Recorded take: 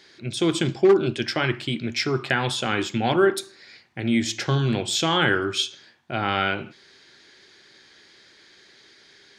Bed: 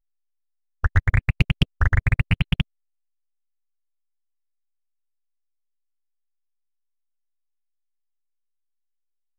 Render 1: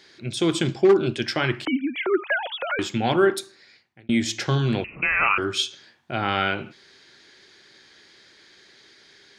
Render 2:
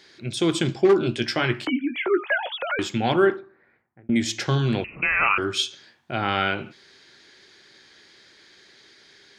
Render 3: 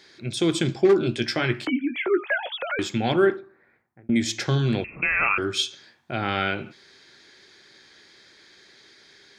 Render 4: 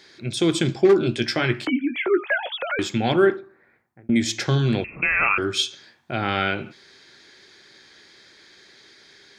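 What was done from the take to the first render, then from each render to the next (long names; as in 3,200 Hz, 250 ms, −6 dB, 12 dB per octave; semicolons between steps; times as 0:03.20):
0:01.65–0:02.79: three sine waves on the formant tracks; 0:03.31–0:04.09: fade out; 0:04.84–0:05.38: voice inversion scrambler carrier 2,800 Hz
0:00.84–0:02.52: double-tracking delay 17 ms −9.5 dB; 0:03.36–0:04.16: low-pass filter 1,600 Hz 24 dB per octave
notch filter 2,900 Hz, Q 15; dynamic equaliser 1,000 Hz, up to −5 dB, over −37 dBFS, Q 1.6
level +2 dB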